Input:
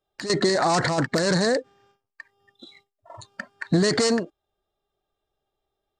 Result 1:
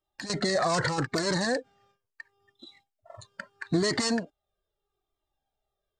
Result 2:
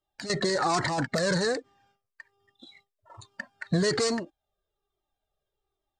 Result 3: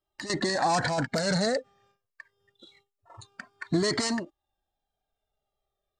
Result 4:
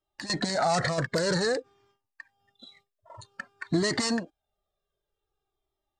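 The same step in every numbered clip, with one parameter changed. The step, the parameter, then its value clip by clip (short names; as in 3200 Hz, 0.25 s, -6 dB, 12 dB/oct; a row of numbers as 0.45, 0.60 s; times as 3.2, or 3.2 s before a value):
cascading flanger, rate: 0.77, 1.2, 0.25, 0.52 Hz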